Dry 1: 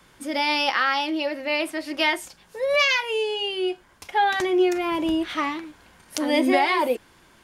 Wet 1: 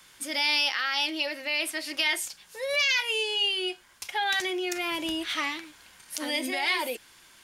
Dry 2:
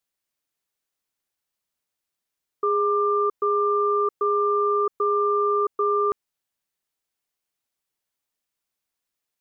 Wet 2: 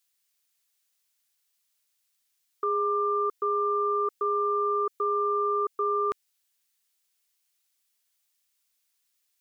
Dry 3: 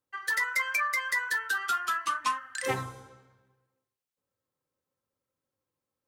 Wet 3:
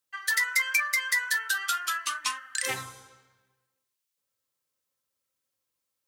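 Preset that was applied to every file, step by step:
dynamic EQ 1100 Hz, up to -5 dB, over -38 dBFS, Q 3.2; limiter -17 dBFS; tilt shelf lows -8.5 dB, about 1400 Hz; match loudness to -27 LUFS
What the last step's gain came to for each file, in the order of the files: -2.0, +1.5, +0.5 dB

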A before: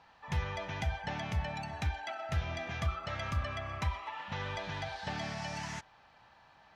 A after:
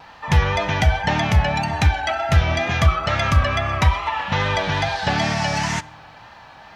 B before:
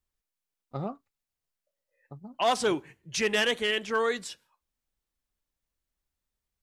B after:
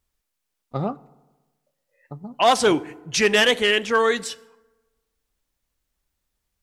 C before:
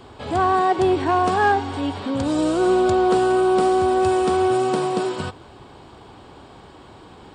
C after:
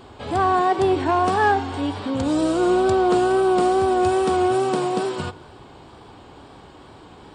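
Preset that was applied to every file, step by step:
wow and flutter 45 cents; FDN reverb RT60 1.2 s, low-frequency decay 1×, high-frequency decay 0.5×, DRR 19.5 dB; match loudness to -20 LUFS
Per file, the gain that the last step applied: +17.5, +8.5, -0.5 dB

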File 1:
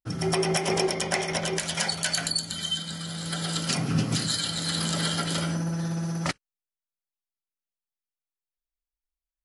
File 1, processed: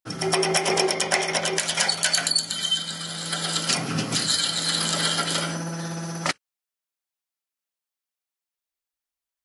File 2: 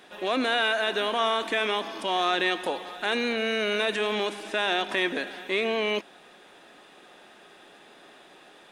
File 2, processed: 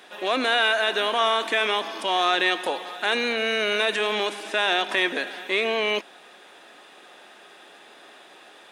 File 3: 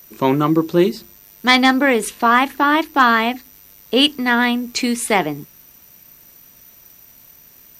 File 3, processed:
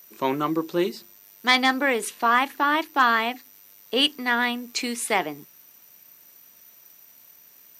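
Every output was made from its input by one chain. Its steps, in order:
HPF 430 Hz 6 dB/oct; match loudness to -23 LUFS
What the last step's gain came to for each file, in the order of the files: +5.5, +4.5, -5.0 dB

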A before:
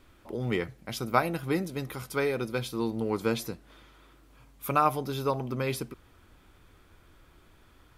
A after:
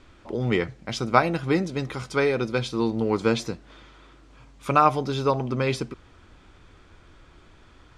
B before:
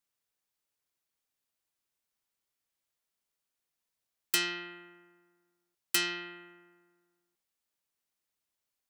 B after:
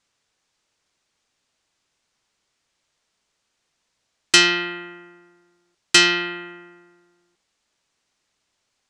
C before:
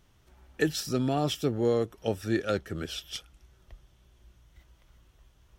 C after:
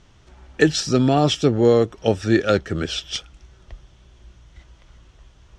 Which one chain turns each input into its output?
LPF 7500 Hz 24 dB/oct; normalise peaks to -1.5 dBFS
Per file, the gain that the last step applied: +6.0, +16.5, +10.5 dB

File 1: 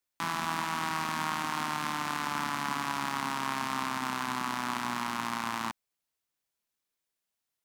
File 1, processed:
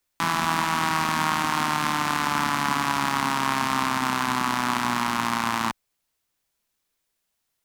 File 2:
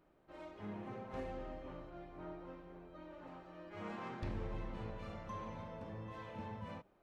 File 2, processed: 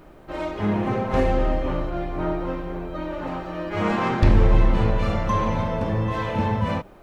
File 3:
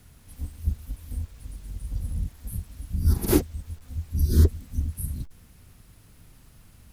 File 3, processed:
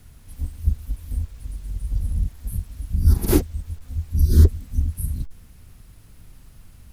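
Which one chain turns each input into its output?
low shelf 63 Hz +9 dB; match loudness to -24 LUFS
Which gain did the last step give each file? +8.5, +22.5, +1.5 dB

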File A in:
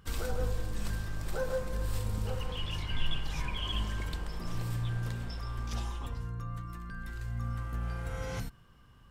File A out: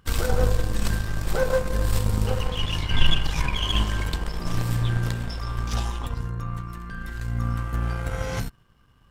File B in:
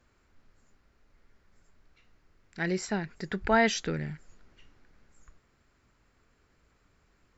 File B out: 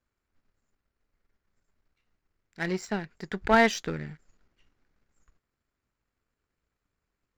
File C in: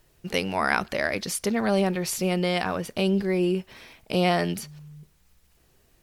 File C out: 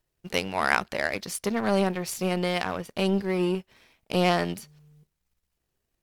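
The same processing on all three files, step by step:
power-law curve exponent 1.4; match loudness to -27 LUFS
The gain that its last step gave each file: +14.0, +5.0, +3.5 dB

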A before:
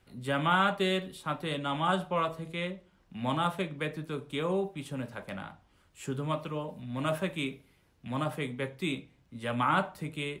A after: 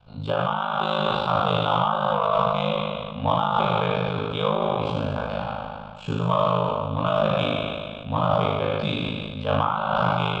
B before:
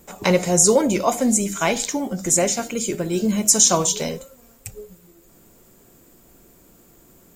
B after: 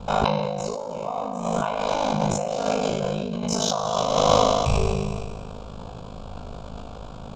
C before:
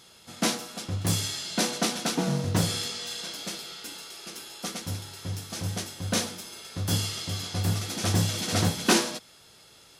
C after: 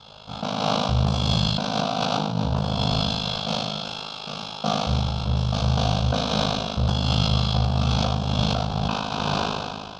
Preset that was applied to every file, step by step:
spectral trails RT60 1.92 s; LPF 3800 Hz 24 dB/oct; on a send: flutter echo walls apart 5.8 m, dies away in 0.22 s; on the sum: negative-ratio compressor -28 dBFS, ratio -1; fixed phaser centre 800 Hz, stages 4; in parallel at -11 dB: soft clip -29.5 dBFS; on the sum: ring modulator 26 Hz; sustainer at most 28 dB/s; match loudness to -24 LUFS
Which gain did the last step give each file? +10.0, +7.0, +8.5 dB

